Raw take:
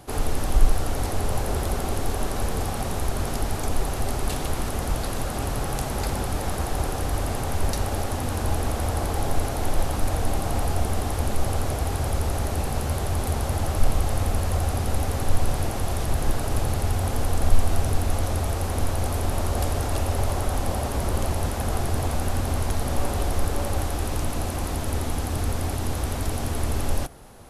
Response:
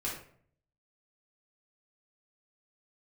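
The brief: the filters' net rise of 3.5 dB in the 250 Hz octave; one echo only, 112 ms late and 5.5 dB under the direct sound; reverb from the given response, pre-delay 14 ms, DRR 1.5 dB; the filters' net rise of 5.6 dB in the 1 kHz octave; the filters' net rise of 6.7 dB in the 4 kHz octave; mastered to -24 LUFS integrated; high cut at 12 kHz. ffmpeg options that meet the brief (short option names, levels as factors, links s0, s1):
-filter_complex "[0:a]lowpass=12000,equalizer=f=250:t=o:g=4,equalizer=f=1000:t=o:g=7,equalizer=f=4000:t=o:g=8,aecho=1:1:112:0.531,asplit=2[s0][s1];[1:a]atrim=start_sample=2205,adelay=14[s2];[s1][s2]afir=irnorm=-1:irlink=0,volume=0.562[s3];[s0][s3]amix=inputs=2:normalize=0,volume=0.668"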